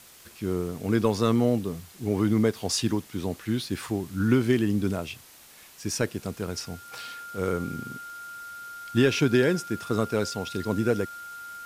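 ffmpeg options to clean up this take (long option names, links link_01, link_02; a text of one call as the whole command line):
ffmpeg -i in.wav -af "adeclick=threshold=4,bandreject=frequency=1400:width=30,afwtdn=0.0032" out.wav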